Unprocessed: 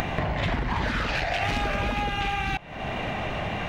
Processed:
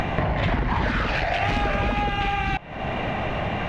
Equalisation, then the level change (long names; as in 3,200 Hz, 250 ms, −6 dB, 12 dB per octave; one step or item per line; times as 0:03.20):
low-pass filter 2,700 Hz 6 dB per octave
+4.0 dB